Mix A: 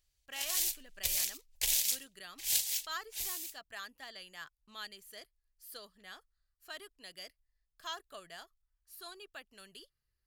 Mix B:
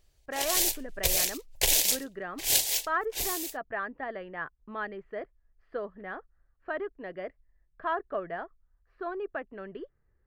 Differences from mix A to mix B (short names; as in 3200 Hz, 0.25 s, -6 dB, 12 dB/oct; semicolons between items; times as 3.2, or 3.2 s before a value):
speech: add Chebyshev low-pass 1900 Hz, order 3; master: remove passive tone stack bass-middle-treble 5-5-5